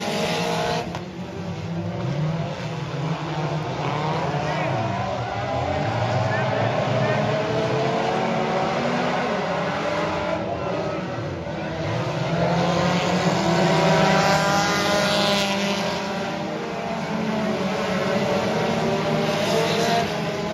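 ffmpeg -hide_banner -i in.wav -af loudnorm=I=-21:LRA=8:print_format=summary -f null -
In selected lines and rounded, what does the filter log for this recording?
Input Integrated:    -22.8 LUFS
Input True Peak:      -5.9 dBTP
Input LRA:             5.7 LU
Input Threshold:     -32.8 LUFS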